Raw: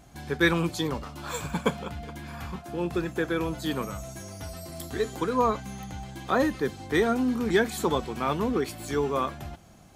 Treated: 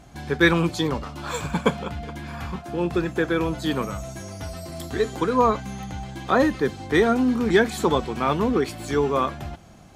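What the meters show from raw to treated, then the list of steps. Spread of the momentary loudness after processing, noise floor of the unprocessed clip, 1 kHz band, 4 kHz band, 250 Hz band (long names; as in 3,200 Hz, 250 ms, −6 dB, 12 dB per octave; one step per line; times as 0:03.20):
15 LU, −52 dBFS, +5.0 dB, +4.0 dB, +5.0 dB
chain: high-shelf EQ 10,000 Hz −11 dB
level +5 dB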